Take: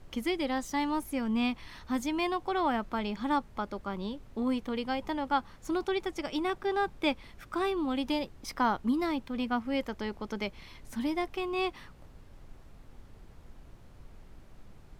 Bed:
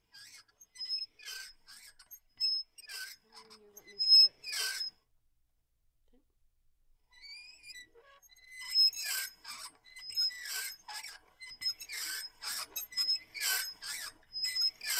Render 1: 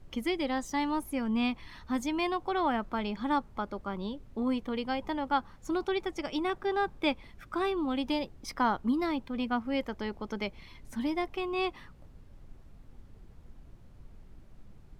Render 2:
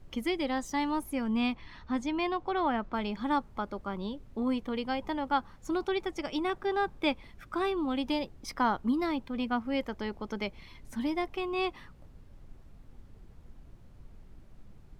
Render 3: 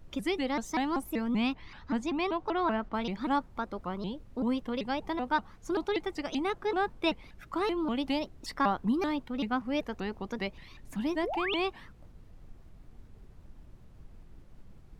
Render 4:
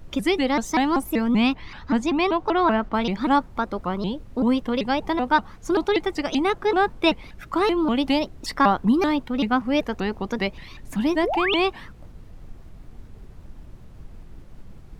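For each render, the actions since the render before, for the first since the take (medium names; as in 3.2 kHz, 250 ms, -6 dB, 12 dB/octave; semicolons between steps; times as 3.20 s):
noise reduction 6 dB, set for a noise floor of -53 dBFS
1.54–2.94 s: distance through air 84 m
11.23–11.57 s: painted sound rise 340–3900 Hz -34 dBFS; vibrato with a chosen wave saw up 5.2 Hz, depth 250 cents
trim +9.5 dB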